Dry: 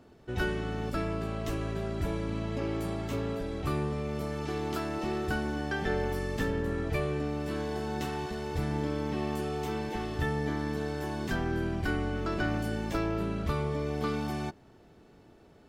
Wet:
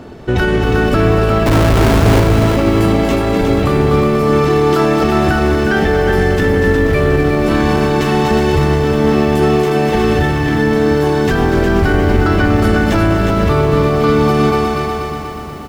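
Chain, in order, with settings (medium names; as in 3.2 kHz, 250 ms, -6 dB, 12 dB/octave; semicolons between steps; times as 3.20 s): 1.46–2.20 s: Schmitt trigger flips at -36 dBFS; treble shelf 4.9 kHz -6 dB; feedback delay 241 ms, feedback 59%, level -7.5 dB; loudness maximiser +27.5 dB; bit-crushed delay 361 ms, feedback 35%, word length 6-bit, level -5 dB; trim -4.5 dB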